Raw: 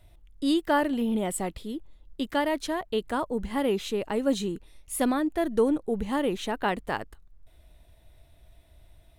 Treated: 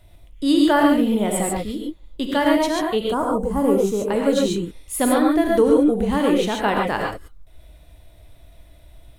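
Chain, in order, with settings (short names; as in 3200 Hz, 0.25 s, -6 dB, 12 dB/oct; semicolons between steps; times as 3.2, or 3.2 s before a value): 2.99–4.03 band shelf 2800 Hz -15 dB; non-linear reverb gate 0.16 s rising, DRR -0.5 dB; gain +5 dB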